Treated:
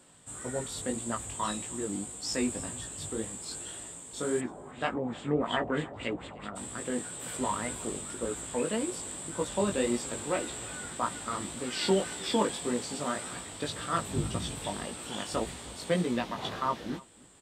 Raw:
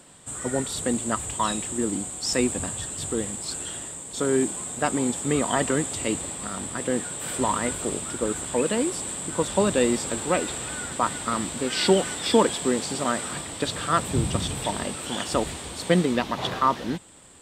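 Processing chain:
chorus effect 1.8 Hz, delay 16.5 ms, depth 3.9 ms
0:04.40–0:06.55: auto-filter low-pass sine 1.9 Hz → 5.7 Hz 630–3,600 Hz
single-tap delay 306 ms −23 dB
level −4.5 dB

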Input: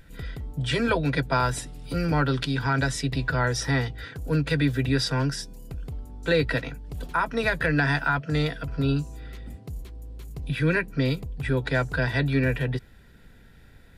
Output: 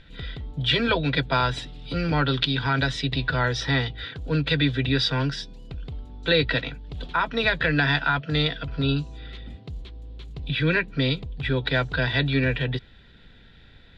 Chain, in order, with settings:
low-pass with resonance 3,600 Hz, resonance Q 3.5

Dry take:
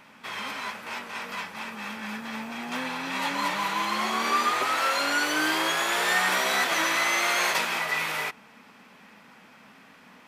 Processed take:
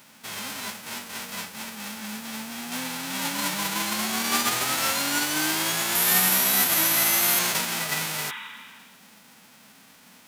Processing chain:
spectral envelope flattened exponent 0.3
0:05.95–0:07.39: parametric band 12,000 Hz +13.5 dB 0.32 octaves
0:08.31–0:08.98: healed spectral selection 860–3,900 Hz both

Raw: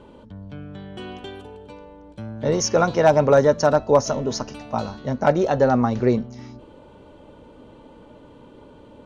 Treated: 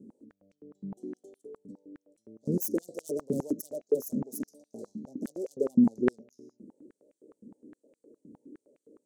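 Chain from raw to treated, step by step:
phase distortion by the signal itself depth 0.42 ms
inverse Chebyshev band-stop filter 1,200–2,400 Hz, stop band 80 dB
high-pass on a step sequencer 9.7 Hz 210–2,400 Hz
level −7 dB

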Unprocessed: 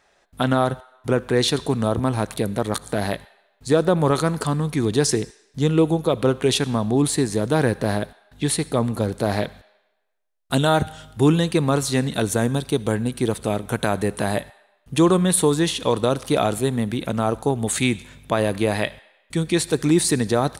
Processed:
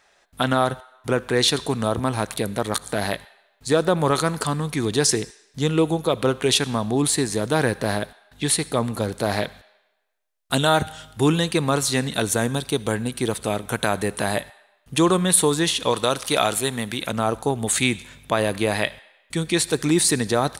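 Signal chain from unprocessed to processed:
tilt shelving filter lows −3.5 dB, about 740 Hz, from 0:15.92 lows −7.5 dB, from 0:17.10 lows −3 dB

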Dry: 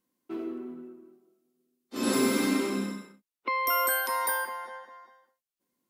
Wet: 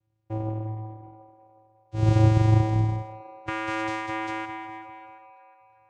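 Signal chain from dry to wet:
channel vocoder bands 4, square 109 Hz
delay with a band-pass on its return 363 ms, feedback 46%, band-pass 1,000 Hz, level −9 dB
level +6 dB

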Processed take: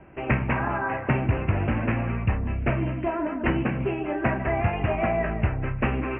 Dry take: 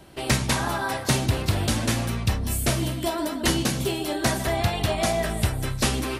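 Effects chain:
Butterworth low-pass 2,700 Hz 96 dB per octave

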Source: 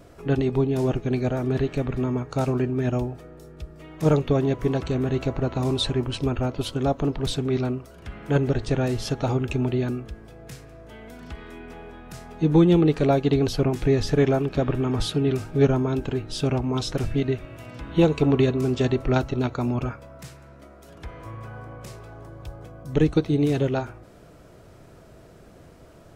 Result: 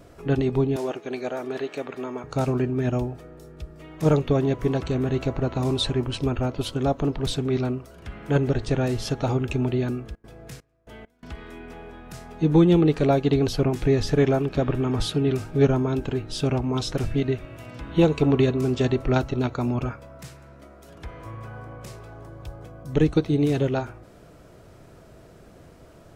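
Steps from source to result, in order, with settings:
0:00.76–0:02.24: high-pass filter 410 Hz 12 dB per octave
0:10.03–0:11.34: gate pattern "x.xxxx...xx..x" 167 BPM −24 dB

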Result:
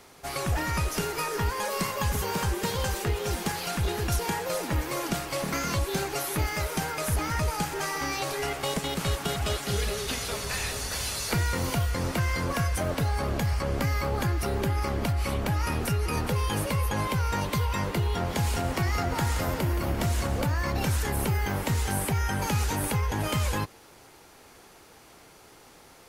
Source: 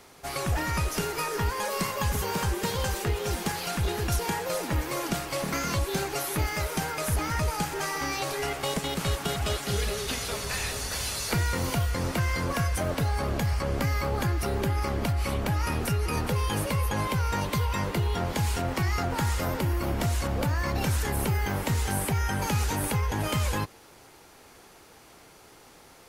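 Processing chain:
0:18.13–0:20.42: feedback echo at a low word length 174 ms, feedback 35%, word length 9 bits, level −10.5 dB

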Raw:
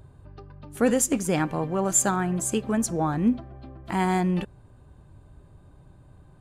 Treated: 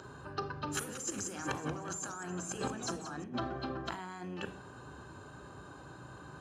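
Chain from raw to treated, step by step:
sub-octave generator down 1 octave, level −6 dB
meter weighting curve A
brickwall limiter −20.5 dBFS, peak gain reduction 9.5 dB
compressor whose output falls as the input rises −44 dBFS, ratio −1
convolution reverb RT60 0.55 s, pre-delay 36 ms, DRR 11 dB
0:00.66–0:03.24: feedback echo with a swinging delay time 185 ms, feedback 48%, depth 145 cents, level −10 dB
level −1 dB

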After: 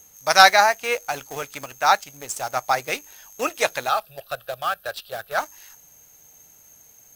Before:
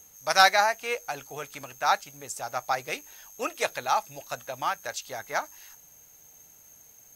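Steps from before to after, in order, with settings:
0:03.89–0:05.38: phaser with its sweep stopped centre 1,400 Hz, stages 8
in parallel at −5 dB: bit-depth reduction 6 bits, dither none
on the sum: level +2.5 dB

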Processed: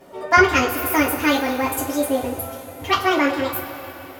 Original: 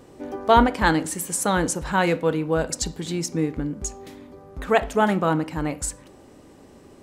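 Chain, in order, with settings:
gliding playback speed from 152% → 183%
coupled-rooms reverb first 0.22 s, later 3.9 s, from −20 dB, DRR −7.5 dB
level −5.5 dB

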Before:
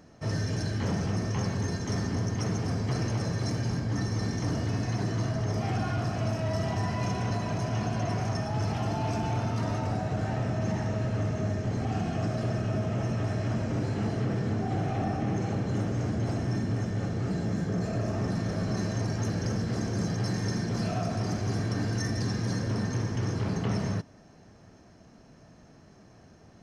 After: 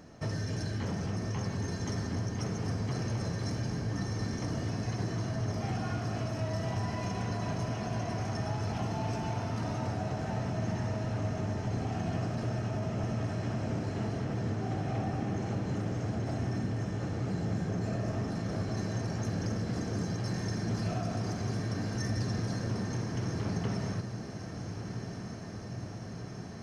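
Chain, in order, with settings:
downward compressor 4 to 1, threshold −34 dBFS, peak gain reduction 8.5 dB
on a send: feedback delay with all-pass diffusion 1,382 ms, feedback 78%, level −9.5 dB
on the sum: level +2 dB

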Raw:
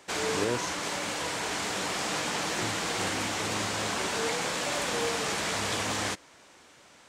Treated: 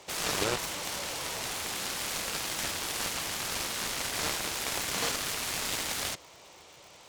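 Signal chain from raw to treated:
graphic EQ with 15 bands 250 Hz −11 dB, 1,600 Hz −10 dB, 10,000 Hz −6 dB
surface crackle 190 per second −49 dBFS
harmonic generator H 7 −8 dB, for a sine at −19.5 dBFS

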